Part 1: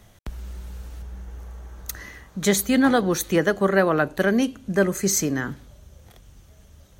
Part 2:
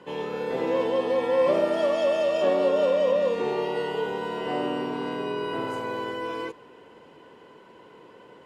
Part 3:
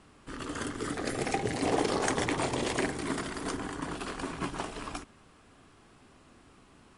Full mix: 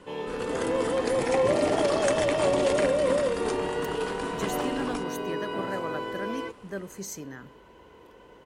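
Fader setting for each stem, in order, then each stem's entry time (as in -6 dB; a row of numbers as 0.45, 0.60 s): -16.0, -2.5, +0.5 dB; 1.95, 0.00, 0.00 s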